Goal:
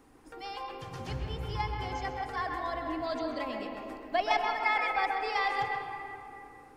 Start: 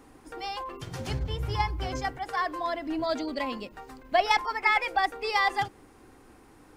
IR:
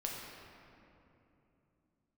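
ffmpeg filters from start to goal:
-filter_complex "[0:a]acrossover=split=6000[s0][s1];[s1]acompressor=threshold=0.002:ratio=4:attack=1:release=60[s2];[s0][s2]amix=inputs=2:normalize=0,asplit=2[s3][s4];[s4]bass=f=250:g=-6,treble=f=4000:g=-10[s5];[1:a]atrim=start_sample=2205,adelay=130[s6];[s5][s6]afir=irnorm=-1:irlink=0,volume=0.794[s7];[s3][s7]amix=inputs=2:normalize=0,volume=0.501"

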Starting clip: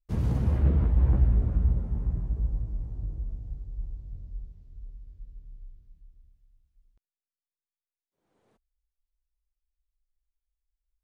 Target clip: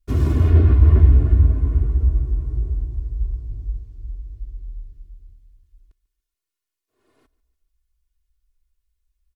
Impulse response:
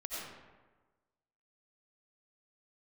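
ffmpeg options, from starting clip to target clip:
-af "equalizer=f=630:t=o:w=0.31:g=-10,aecho=1:1:3.3:0.92,asetrate=52038,aresample=44100,aecho=1:1:144|288|432:0.0944|0.0425|0.0191,volume=2.11"

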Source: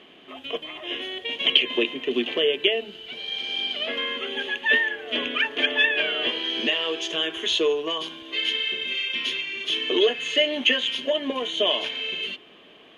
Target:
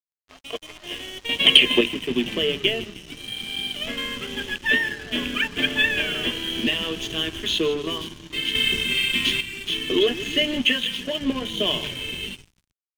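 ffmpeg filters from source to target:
-filter_complex "[0:a]asettb=1/sr,asplit=3[s0][s1][s2];[s0]atrim=end=1.294[s3];[s1]atrim=start=1.29:end=1.81,asetpts=PTS-STARTPTS,afade=t=in:d=0.004:c=qsin,afade=t=out:st=0.516:d=0.004:c=qsin,acontrast=76[s4];[s2]atrim=start=1.806[s5];[s3][s4]acrossfade=d=0.004:c1=hsin:c2=qsin[s6];[s6][s5]acrossfade=d=0.004:c1=qsin:c2=hsin,asplit=7[s7][s8][s9][s10][s11][s12][s13];[s8]adelay=156,afreqshift=-35,volume=0.178[s14];[s9]adelay=312,afreqshift=-70,volume=0.108[s15];[s10]adelay=468,afreqshift=-105,volume=0.0661[s16];[s11]adelay=624,afreqshift=-140,volume=0.0403[s17];[s12]adelay=780,afreqshift=-175,volume=0.0245[s18];[s13]adelay=936,afreqshift=-210,volume=0.015[s19];[s7][s14][s15][s16][s17][s18][s19]amix=inputs=7:normalize=0,aeval=exprs='sgn(val(0))*max(abs(val(0))-0.0119,0)':c=same,asubboost=boost=8:cutoff=190,asettb=1/sr,asplit=3[s20][s21][s22];[s20]atrim=end=8.554[s23];[s21]atrim=start=8.55:end=9.41,asetpts=PTS-STARTPTS,afade=t=in:d=0.004:c=qsin,afade=t=out:st=0.856:d=0.004:c=qsin,acontrast=55[s24];[s22]atrim=start=9.406[s25];[s23][s24]acrossfade=d=0.004:c1=hsin:c2=qsin[s26];[s26][s25]acrossfade=d=0.004:c1=qsin:c2=hsin,asettb=1/sr,asplit=3[s27][s28][s29];[s27]atrim=end=10.654[s30];[s28]atrim=start=10.65:end=11.21,asetpts=PTS-STARTPTS,afade=t=in:d=0.004:c=qsin,afade=t=out:st=0.556:d=0.004:c=qsin,lowshelf=f=240:g=-9[s31];[s29]atrim=start=11.206[s32];[s30][s31]acrossfade=d=0.004:c1=hsin:c2=qsin[s33];[s33][s32]acrossfade=d=0.004:c1=qsin:c2=hsin,volume=1.12"

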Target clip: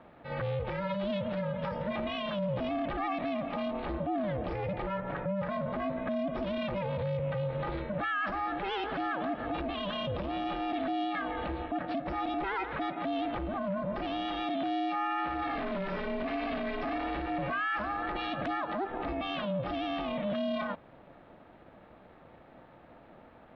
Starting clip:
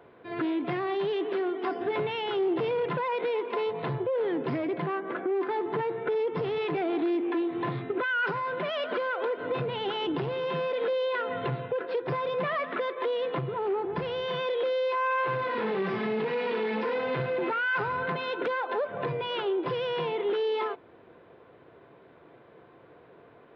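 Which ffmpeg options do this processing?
-af "bandreject=f=59.71:t=h:w=4,bandreject=f=119.42:t=h:w=4,bandreject=f=179.13:t=h:w=4,bandreject=f=238.84:t=h:w=4,bandreject=f=298.55:t=h:w=4,alimiter=level_in=1.33:limit=0.0631:level=0:latency=1:release=30,volume=0.75,aeval=exprs='val(0)*sin(2*PI*200*n/s)':c=same,volume=1.33"

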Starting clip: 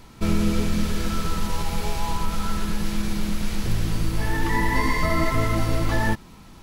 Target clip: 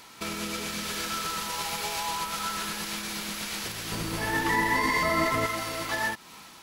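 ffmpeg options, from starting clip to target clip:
-af "dynaudnorm=f=100:g=7:m=1.58,alimiter=limit=0.15:level=0:latency=1:release=268,asetnsamples=n=441:p=0,asendcmd='3.92 highpass f 410;5.46 highpass f 1300',highpass=f=1300:p=1,volume=1.88"

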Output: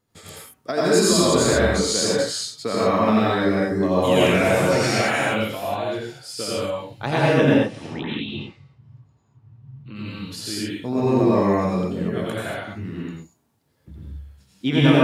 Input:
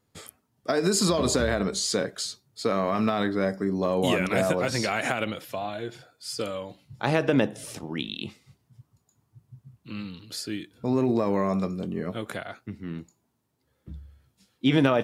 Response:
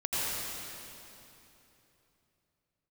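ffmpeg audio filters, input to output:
-filter_complex "[0:a]asettb=1/sr,asplit=3[s0][s1][s2];[s0]atrim=end=7.474[s3];[s1]atrim=start=7.47:end=9.96,asetpts=PTS-STARTPTS,afade=t=in:d=0.004:c=qsin,afade=t=out:st=2.486:d=0.004:c=qsin,lowpass=2900[s4];[s2]atrim=start=9.956[s5];[s3][s4]acrossfade=d=0.004:c1=hsin:c2=qsin[s6];[s6][s5]acrossfade=d=0.004:c1=qsin:c2=hsin[s7];[1:a]atrim=start_sample=2205,afade=t=out:st=0.29:d=0.01,atrim=end_sample=13230[s8];[s7][s8]afir=irnorm=-1:irlink=0"

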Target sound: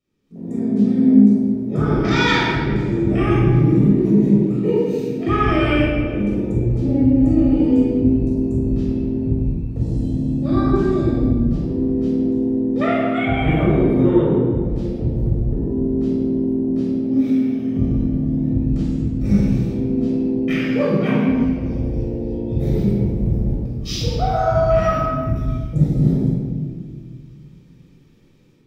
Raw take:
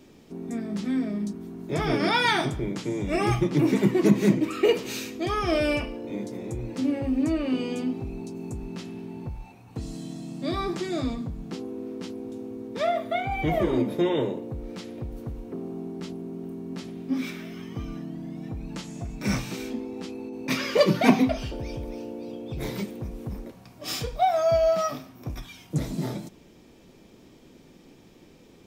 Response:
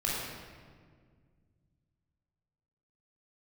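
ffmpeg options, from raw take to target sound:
-filter_complex "[0:a]equalizer=f=670:t=o:w=0.48:g=-11.5,dynaudnorm=f=230:g=3:m=6.68,afwtdn=0.112[s0];[1:a]atrim=start_sample=2205[s1];[s0][s1]afir=irnorm=-1:irlink=0,volume=0.282"

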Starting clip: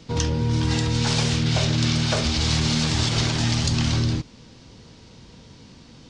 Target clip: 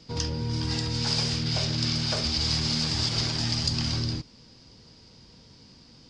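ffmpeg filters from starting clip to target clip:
-af "equalizer=f=4900:t=o:w=0.22:g=14,volume=0.422"

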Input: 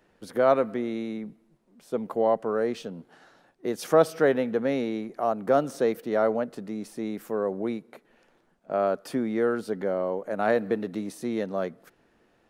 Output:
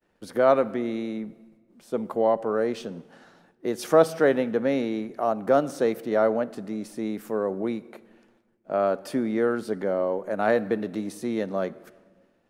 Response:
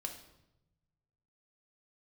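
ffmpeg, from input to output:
-filter_complex "[0:a]agate=range=0.0224:threshold=0.00126:ratio=3:detection=peak,asplit=2[s0][s1];[1:a]atrim=start_sample=2205,asetrate=22932,aresample=44100[s2];[s1][s2]afir=irnorm=-1:irlink=0,volume=0.178[s3];[s0][s3]amix=inputs=2:normalize=0"

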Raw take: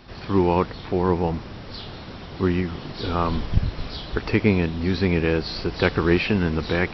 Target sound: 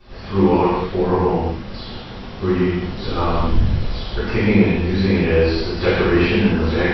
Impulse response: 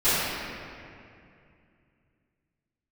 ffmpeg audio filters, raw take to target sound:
-filter_complex "[1:a]atrim=start_sample=2205,afade=t=out:st=0.37:d=0.01,atrim=end_sample=16758,asetrate=52920,aresample=44100[s0];[0:a][s0]afir=irnorm=-1:irlink=0,volume=0.266"

